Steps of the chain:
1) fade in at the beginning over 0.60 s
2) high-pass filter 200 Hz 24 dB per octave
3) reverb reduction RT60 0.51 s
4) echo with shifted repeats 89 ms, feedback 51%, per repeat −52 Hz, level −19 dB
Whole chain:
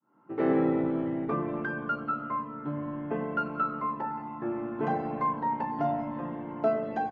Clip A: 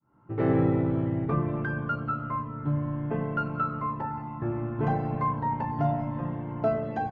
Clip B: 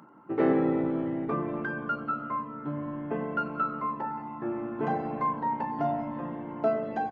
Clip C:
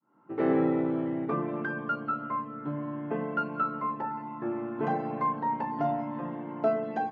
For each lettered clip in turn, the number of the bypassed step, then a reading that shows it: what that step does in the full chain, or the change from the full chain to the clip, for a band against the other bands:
2, 125 Hz band +11.5 dB
1, change in crest factor +2.0 dB
4, echo-to-direct ratio −17.5 dB to none audible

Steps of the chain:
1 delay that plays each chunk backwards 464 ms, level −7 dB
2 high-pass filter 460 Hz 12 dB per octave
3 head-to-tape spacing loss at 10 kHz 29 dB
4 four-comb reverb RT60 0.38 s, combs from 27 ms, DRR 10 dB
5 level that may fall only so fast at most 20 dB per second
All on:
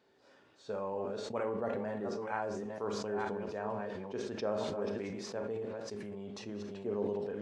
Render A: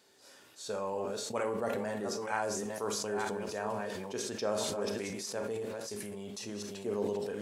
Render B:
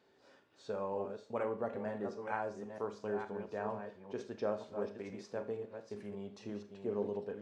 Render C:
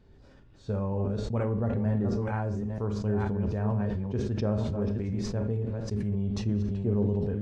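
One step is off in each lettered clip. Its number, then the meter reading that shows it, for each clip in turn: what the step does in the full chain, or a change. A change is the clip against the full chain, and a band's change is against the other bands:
3, 8 kHz band +12.0 dB
5, change in crest factor +2.5 dB
2, 125 Hz band +20.5 dB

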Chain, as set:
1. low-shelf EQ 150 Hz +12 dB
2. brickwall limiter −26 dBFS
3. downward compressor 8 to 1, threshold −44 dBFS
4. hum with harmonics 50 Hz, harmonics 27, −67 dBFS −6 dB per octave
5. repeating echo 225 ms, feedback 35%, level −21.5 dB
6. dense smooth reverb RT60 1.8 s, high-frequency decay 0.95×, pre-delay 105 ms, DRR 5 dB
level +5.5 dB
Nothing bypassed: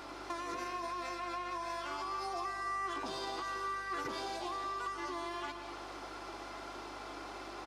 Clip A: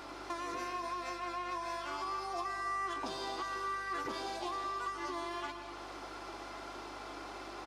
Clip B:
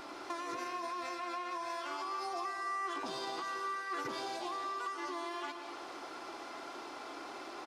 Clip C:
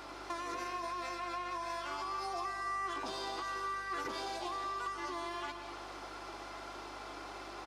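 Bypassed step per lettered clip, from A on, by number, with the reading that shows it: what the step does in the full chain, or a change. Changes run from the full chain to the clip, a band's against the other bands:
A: 2, average gain reduction 3.0 dB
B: 4, 125 Hz band −8.0 dB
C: 1, 250 Hz band −1.5 dB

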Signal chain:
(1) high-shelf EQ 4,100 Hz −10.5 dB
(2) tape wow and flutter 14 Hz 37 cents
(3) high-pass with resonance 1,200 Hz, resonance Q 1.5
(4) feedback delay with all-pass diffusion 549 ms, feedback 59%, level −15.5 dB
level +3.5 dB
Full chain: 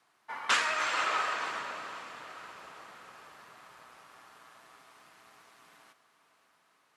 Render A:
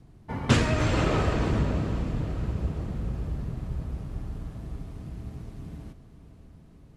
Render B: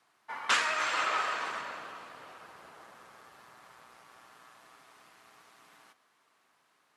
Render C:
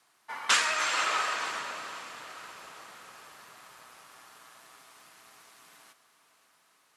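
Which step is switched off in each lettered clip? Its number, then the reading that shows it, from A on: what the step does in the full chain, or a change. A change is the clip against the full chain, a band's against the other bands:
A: 3, 125 Hz band +40.0 dB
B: 4, echo-to-direct ratio −13.5 dB to none audible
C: 1, 8 kHz band +7.5 dB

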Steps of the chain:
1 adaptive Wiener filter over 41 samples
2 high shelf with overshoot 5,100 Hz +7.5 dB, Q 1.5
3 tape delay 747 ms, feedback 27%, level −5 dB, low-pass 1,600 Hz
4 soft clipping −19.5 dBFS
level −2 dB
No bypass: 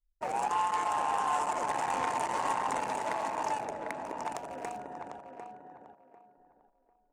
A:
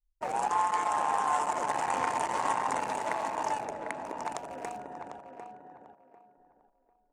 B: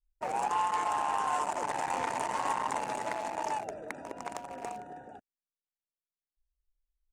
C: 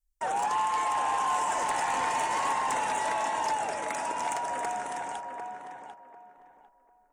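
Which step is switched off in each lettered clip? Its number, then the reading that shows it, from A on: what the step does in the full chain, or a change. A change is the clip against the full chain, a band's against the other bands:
4, distortion level −18 dB
3, change in momentary loudness spread −3 LU
1, 125 Hz band −5.0 dB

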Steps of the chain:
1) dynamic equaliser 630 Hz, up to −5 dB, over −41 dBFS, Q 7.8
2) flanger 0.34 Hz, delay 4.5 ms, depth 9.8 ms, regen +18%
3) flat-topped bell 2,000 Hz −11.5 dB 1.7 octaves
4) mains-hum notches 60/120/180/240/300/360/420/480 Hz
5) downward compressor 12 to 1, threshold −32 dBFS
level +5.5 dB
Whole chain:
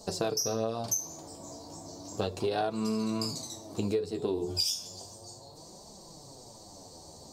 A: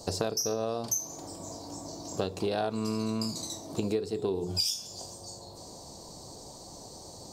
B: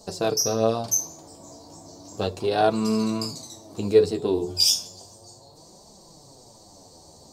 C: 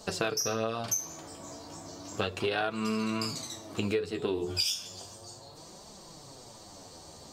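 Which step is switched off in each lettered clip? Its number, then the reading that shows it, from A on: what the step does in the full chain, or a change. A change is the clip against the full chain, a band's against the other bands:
2, change in momentary loudness spread −3 LU
5, average gain reduction 3.5 dB
3, 2 kHz band +10.0 dB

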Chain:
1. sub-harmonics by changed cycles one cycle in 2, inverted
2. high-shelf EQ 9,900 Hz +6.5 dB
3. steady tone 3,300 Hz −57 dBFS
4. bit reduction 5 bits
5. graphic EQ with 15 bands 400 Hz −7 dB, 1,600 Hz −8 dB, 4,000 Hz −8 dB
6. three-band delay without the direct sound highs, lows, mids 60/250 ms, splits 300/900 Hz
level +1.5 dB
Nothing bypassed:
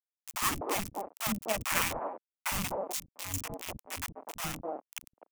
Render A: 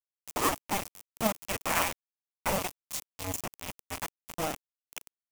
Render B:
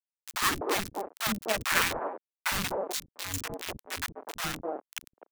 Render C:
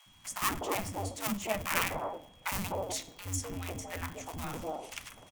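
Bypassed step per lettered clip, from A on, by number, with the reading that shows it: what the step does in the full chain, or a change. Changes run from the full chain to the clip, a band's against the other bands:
6, echo-to-direct ratio −7.0 dB to none audible
5, 2 kHz band +3.5 dB
4, change in momentary loudness spread −2 LU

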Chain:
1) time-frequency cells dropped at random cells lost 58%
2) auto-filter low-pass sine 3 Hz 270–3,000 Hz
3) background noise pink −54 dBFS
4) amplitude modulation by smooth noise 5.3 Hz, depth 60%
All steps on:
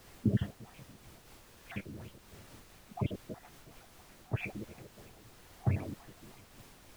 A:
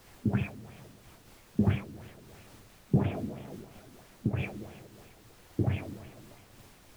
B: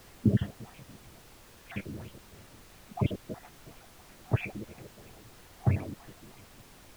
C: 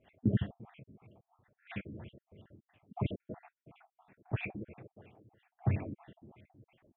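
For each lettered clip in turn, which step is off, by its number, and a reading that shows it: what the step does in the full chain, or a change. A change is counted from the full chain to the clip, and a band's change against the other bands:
1, 4 kHz band −2.5 dB
4, change in momentary loudness spread +1 LU
3, 4 kHz band −3.5 dB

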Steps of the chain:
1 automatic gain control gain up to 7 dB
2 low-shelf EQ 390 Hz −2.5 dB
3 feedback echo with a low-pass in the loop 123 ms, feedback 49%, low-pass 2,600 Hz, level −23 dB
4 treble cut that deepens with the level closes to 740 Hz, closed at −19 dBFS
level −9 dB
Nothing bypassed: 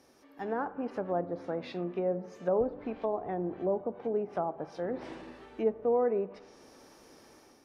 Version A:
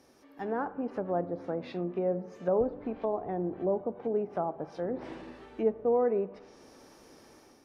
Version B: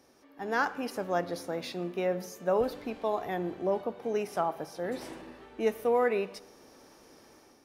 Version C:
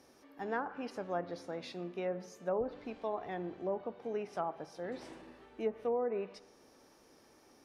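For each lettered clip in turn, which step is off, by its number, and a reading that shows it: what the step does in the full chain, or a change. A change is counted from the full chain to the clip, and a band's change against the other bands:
2, change in integrated loudness +1.0 LU
4, 2 kHz band +10.5 dB
1, change in integrated loudness −6.0 LU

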